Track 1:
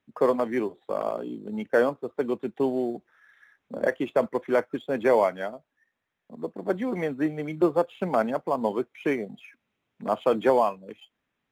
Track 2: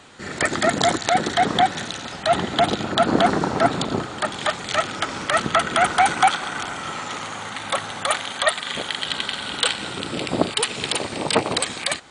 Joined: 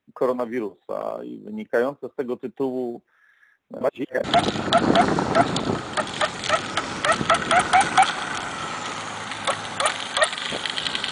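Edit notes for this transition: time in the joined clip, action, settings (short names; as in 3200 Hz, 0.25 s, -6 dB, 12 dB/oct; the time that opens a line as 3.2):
track 1
3.81–4.24 reverse
4.24 switch to track 2 from 2.49 s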